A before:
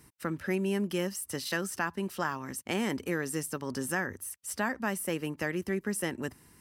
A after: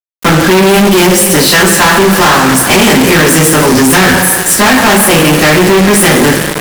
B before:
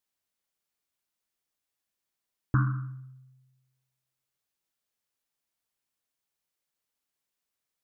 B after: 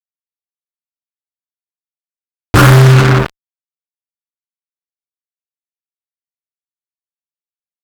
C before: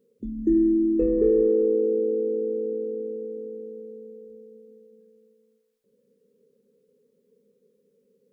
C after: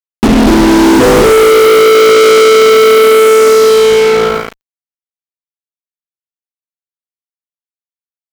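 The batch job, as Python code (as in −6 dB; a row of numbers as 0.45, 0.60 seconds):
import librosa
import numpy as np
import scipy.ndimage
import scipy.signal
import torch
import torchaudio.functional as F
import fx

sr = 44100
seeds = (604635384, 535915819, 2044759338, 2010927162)

y = fx.power_curve(x, sr, exponent=1.4)
y = fx.over_compress(y, sr, threshold_db=-31.0, ratio=-1.0)
y = fx.rev_double_slope(y, sr, seeds[0], early_s=0.28, late_s=2.3, knee_db=-18, drr_db=-10.0)
y = fx.fuzz(y, sr, gain_db=47.0, gate_db=-40.0)
y = y * 10.0 ** (-1.5 / 20.0) / np.max(np.abs(y))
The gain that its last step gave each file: +9.0, +10.0, +9.0 decibels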